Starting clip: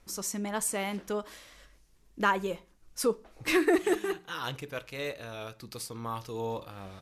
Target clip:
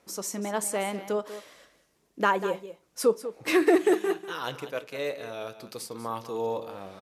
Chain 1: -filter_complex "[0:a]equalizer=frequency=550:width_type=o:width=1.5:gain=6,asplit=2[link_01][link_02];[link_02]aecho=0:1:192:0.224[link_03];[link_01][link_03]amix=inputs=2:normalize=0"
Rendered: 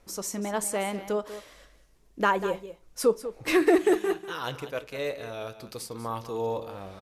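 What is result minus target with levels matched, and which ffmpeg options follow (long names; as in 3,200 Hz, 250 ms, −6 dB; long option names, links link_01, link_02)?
125 Hz band +3.0 dB
-filter_complex "[0:a]highpass=150,equalizer=frequency=550:width_type=o:width=1.5:gain=6,asplit=2[link_01][link_02];[link_02]aecho=0:1:192:0.224[link_03];[link_01][link_03]amix=inputs=2:normalize=0"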